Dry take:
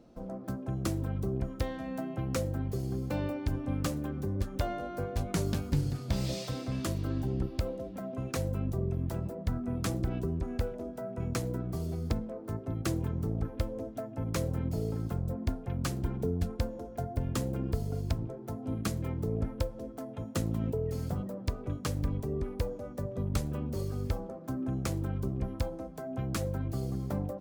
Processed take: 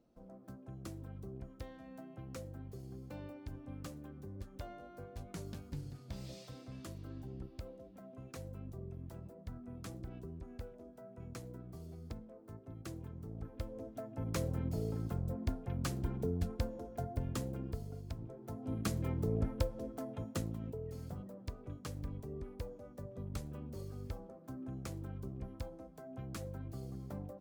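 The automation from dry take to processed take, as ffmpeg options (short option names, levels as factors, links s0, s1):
-af "volume=2.24,afade=t=in:st=13.26:d=1.08:silence=0.316228,afade=t=out:st=17.04:d=1.02:silence=0.354813,afade=t=in:st=18.06:d=1.01:silence=0.266073,afade=t=out:st=20.09:d=0.49:silence=0.354813"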